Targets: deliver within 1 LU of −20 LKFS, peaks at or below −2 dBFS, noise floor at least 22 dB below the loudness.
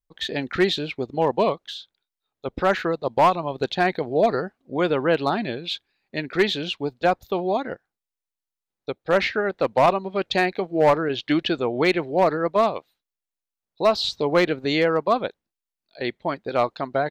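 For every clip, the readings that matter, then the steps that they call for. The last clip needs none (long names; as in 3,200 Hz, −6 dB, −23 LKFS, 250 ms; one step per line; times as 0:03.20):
share of clipped samples 0.3%; peaks flattened at −10.5 dBFS; integrated loudness −23.0 LKFS; sample peak −10.5 dBFS; target loudness −20.0 LKFS
→ clipped peaks rebuilt −10.5 dBFS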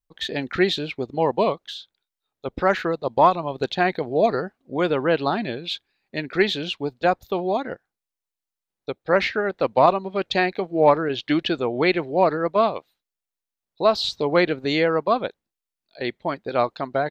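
share of clipped samples 0.0%; integrated loudness −22.5 LKFS; sample peak −3.0 dBFS; target loudness −20.0 LKFS
→ level +2.5 dB
brickwall limiter −2 dBFS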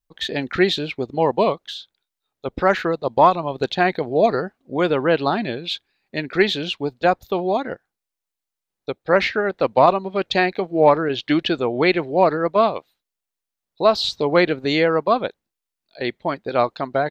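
integrated loudness −20.0 LKFS; sample peak −2.0 dBFS; background noise floor −85 dBFS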